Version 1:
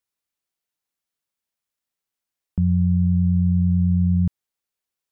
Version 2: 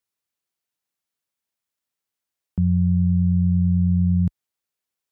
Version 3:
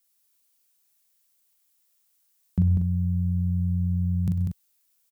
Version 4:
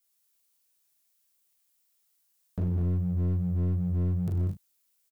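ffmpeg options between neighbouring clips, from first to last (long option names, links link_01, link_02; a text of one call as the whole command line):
ffmpeg -i in.wav -af "highpass=50" out.wav
ffmpeg -i in.wav -filter_complex "[0:a]crystalizer=i=3.5:c=0,asplit=2[link_01][link_02];[link_02]adelay=42,volume=-5dB[link_03];[link_01][link_03]amix=inputs=2:normalize=0,aecho=1:1:98|131|195:0.211|0.141|0.531" out.wav
ffmpeg -i in.wav -filter_complex "[0:a]flanger=delay=17.5:depth=5.5:speed=2.6,volume=26.5dB,asoftclip=hard,volume=-26.5dB,asplit=2[link_01][link_02];[link_02]adelay=34,volume=-10.5dB[link_03];[link_01][link_03]amix=inputs=2:normalize=0" out.wav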